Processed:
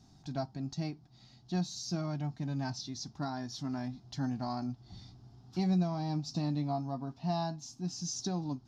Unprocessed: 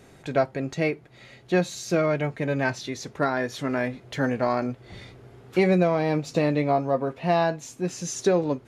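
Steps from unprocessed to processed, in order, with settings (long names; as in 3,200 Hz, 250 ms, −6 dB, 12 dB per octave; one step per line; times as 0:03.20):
drawn EQ curve 210 Hz 0 dB, 300 Hz −4 dB, 500 Hz −26 dB, 750 Hz −3 dB, 2,200 Hz −20 dB, 5,200 Hz +7 dB, 8,700 Hz −14 dB
level −5.5 dB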